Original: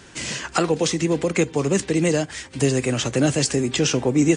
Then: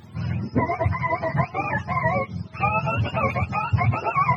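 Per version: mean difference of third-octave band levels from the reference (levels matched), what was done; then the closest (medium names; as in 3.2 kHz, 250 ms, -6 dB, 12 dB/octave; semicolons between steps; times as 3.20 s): 12.0 dB: spectrum inverted on a logarithmic axis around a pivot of 580 Hz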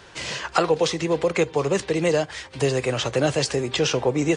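3.0 dB: ten-band graphic EQ 250 Hz -8 dB, 500 Hz +5 dB, 1 kHz +5 dB, 4 kHz +4 dB, 8 kHz -7 dB; trim -2 dB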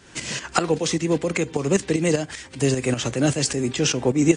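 1.5 dB: tremolo saw up 5.1 Hz, depth 65%; trim +2 dB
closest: third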